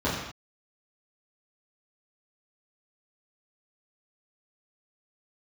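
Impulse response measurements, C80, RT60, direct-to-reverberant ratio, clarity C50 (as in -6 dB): 4.5 dB, no single decay rate, -10.5 dB, 2.5 dB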